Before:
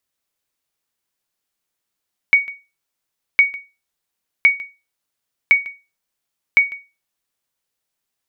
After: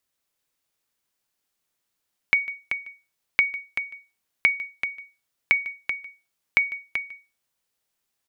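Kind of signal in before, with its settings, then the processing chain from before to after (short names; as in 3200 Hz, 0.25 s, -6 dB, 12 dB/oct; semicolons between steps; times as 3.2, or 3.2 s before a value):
sonar ping 2240 Hz, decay 0.27 s, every 1.06 s, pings 5, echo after 0.15 s, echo -21 dB -3.5 dBFS
compressor, threshold -17 dBFS; echo 0.384 s -8.5 dB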